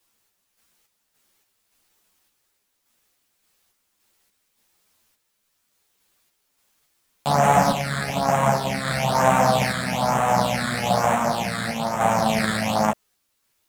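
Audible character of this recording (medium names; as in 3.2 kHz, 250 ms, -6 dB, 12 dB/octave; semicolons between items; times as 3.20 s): phasing stages 8, 1.1 Hz, lowest notch 800–4600 Hz; a quantiser's noise floor 12-bit, dither triangular; random-step tremolo; a shimmering, thickened sound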